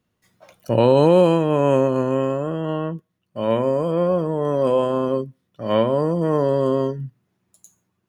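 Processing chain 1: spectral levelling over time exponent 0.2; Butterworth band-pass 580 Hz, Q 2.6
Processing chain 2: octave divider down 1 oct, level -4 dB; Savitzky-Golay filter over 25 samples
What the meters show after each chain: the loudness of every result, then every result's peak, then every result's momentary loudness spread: -16.5 LUFS, -19.5 LUFS; -4.5 dBFS, -3.0 dBFS; 11 LU, 13 LU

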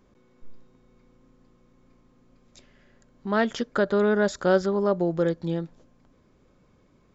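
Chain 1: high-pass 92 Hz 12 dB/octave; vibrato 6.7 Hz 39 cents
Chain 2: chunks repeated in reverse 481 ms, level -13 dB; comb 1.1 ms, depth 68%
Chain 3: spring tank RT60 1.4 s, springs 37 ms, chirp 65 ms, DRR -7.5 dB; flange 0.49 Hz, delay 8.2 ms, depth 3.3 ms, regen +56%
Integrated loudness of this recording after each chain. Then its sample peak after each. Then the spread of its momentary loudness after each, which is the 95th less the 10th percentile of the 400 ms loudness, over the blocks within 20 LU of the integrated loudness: -24.5 LUFS, -25.5 LUFS, -21.0 LUFS; -9.5 dBFS, -10.0 dBFS, -6.5 dBFS; 9 LU, 17 LU, 12 LU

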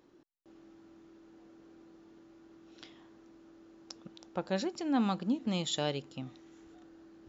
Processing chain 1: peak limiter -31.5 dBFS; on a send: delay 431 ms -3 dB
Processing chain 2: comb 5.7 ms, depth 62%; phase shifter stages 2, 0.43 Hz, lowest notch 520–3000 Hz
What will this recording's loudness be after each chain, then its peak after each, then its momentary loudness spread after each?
-40.5 LUFS, -33.0 LUFS; -27.0 dBFS, -20.5 dBFS; 20 LU, 19 LU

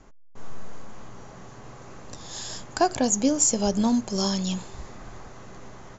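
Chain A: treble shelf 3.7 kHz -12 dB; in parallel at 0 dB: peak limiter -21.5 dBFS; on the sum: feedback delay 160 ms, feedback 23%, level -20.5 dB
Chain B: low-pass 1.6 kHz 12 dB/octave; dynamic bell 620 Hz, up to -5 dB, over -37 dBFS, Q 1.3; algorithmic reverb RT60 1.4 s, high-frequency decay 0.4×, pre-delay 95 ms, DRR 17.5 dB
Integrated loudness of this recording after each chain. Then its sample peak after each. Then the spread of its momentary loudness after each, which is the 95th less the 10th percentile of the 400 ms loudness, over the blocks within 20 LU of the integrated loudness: -22.0 LUFS, -27.0 LUFS; -8.5 dBFS, -13.5 dBFS; 20 LU, 21 LU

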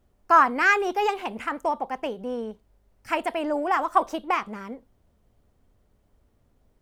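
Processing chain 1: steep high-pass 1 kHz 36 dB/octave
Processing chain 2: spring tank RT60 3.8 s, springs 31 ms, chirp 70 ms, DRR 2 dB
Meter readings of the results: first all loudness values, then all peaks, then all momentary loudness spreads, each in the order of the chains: -25.5 LUFS, -23.0 LUFS; -8.5 dBFS, -3.5 dBFS; 20 LU, 19 LU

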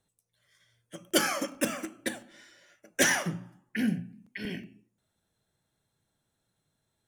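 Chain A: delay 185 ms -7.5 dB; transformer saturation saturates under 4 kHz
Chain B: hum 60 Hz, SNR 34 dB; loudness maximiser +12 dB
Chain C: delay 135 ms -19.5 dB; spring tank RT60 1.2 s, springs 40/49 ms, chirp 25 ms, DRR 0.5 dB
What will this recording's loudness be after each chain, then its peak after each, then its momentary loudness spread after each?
-33.5 LUFS, -19.5 LUFS, -28.5 LUFS; -11.0 dBFS, -1.0 dBFS, -9.0 dBFS; 19 LU, 17 LU, 18 LU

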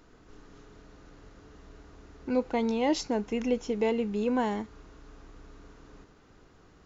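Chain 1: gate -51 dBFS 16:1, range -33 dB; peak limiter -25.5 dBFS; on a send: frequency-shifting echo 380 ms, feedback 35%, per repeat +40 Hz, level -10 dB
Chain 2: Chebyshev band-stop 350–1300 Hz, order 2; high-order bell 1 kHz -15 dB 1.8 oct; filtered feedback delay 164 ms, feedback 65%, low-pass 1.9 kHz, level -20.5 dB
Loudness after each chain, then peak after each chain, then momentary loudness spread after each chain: -34.5 LUFS, -32.5 LUFS; -23.0 dBFS, -19.5 dBFS; 21 LU, 10 LU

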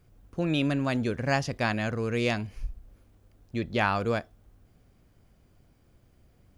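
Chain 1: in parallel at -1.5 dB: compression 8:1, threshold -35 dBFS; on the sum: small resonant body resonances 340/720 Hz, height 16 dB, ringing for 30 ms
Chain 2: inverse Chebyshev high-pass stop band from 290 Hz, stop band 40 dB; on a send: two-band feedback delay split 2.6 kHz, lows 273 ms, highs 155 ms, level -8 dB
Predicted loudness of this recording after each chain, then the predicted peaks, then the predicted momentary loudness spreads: -18.5 LUFS, -32.0 LUFS; -3.0 dBFS, -11.5 dBFS; 9 LU, 19 LU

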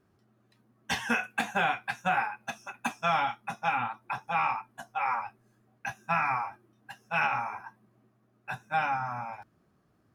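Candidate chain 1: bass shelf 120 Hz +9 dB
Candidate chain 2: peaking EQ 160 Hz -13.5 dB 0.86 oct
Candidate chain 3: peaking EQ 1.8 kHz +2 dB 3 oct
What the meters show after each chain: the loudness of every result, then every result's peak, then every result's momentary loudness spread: -31.0 LUFS, -31.5 LUFS, -29.5 LUFS; -15.0 dBFS, -16.0 dBFS, -14.5 dBFS; 13 LU, 13 LU, 13 LU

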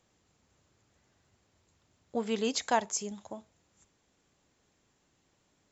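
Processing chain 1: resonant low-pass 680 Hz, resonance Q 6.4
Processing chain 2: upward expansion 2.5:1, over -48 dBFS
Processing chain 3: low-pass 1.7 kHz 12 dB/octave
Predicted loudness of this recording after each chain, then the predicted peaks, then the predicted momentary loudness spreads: -25.5 LUFS, -36.0 LUFS, -34.0 LUFS; -6.5 dBFS, -14.5 dBFS, -14.5 dBFS; 17 LU, 16 LU, 15 LU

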